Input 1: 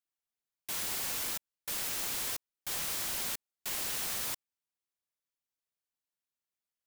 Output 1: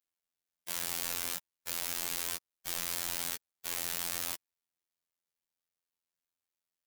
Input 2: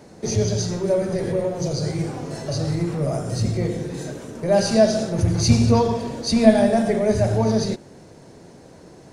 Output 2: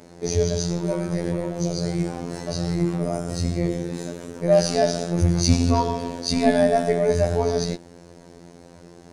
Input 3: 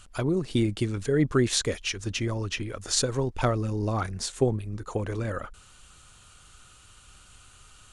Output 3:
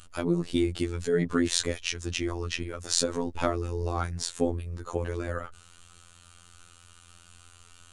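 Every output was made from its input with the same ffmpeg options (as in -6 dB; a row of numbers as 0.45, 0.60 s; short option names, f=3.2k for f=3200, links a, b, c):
-af "afftfilt=real='hypot(re,im)*cos(PI*b)':imag='0':win_size=2048:overlap=0.75,volume=2.5dB"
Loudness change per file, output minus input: -1.0, -2.0, -2.0 LU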